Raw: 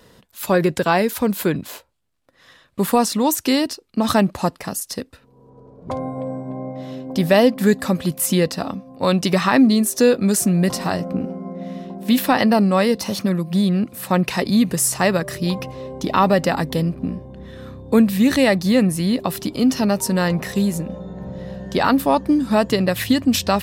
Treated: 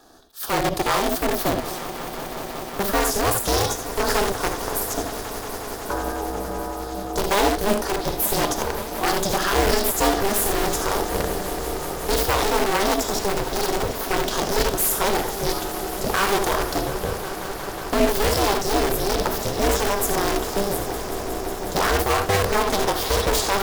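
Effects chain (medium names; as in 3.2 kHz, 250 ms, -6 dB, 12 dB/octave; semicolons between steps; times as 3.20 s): Butterworth band-stop 1.9 kHz, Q 2; valve stage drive 9 dB, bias 0.45; reverberation, pre-delay 3 ms, DRR 5.5 dB; in parallel at -4 dB: integer overflow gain 15.5 dB; on the sum: high-pass 200 Hz; formant shift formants +4 st; on a send: echo with a slow build-up 182 ms, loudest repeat 5, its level -16 dB; on the sum: ring modulator 200 Hz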